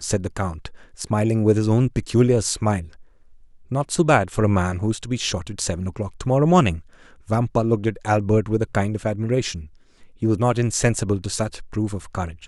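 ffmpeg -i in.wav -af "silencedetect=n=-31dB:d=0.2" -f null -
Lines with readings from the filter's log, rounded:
silence_start: 0.68
silence_end: 0.99 | silence_duration: 0.31
silence_start: 2.84
silence_end: 3.72 | silence_duration: 0.87
silence_start: 6.79
silence_end: 7.29 | silence_duration: 0.50
silence_start: 9.64
silence_end: 10.22 | silence_duration: 0.58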